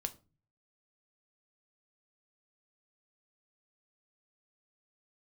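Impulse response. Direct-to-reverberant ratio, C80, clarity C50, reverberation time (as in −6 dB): 8.0 dB, 24.0 dB, 18.5 dB, 0.35 s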